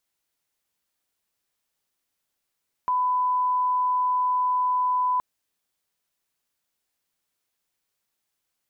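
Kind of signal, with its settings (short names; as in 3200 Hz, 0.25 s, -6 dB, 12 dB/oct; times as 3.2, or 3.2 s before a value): line-up tone -20 dBFS 2.32 s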